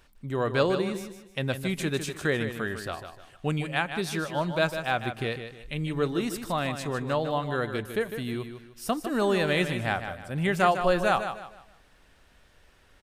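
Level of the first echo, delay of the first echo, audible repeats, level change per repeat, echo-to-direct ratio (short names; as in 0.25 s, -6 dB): -9.0 dB, 0.153 s, 3, -9.5 dB, -8.5 dB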